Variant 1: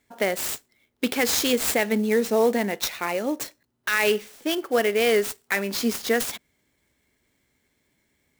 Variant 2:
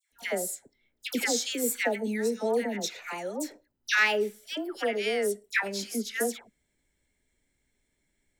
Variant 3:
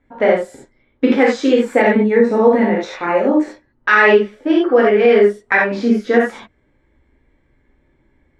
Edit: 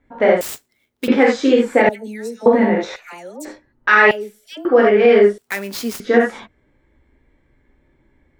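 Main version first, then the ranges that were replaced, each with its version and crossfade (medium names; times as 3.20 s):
3
0.41–1.08 s: from 1
1.89–2.46 s: from 2
2.96–3.45 s: from 2
4.11–4.65 s: from 2
5.38–6.00 s: from 1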